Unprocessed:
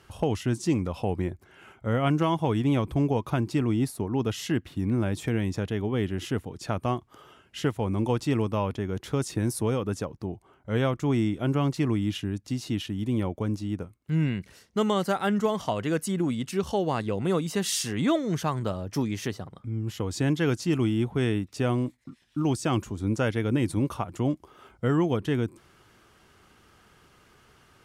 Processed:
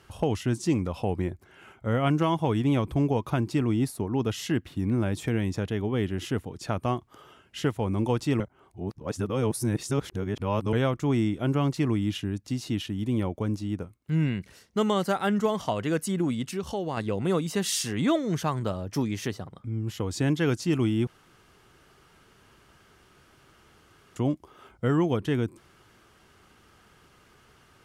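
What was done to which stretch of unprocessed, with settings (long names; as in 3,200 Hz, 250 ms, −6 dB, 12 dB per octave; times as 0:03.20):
0:08.40–0:10.73: reverse
0:16.52–0:16.97: downward compressor 1.5 to 1, threshold −34 dBFS
0:21.07–0:24.16: fill with room tone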